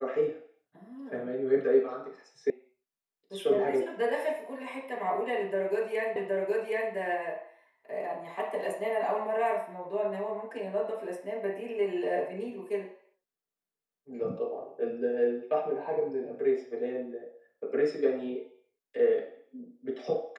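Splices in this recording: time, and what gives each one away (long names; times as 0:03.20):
0:02.50: cut off before it has died away
0:06.16: the same again, the last 0.77 s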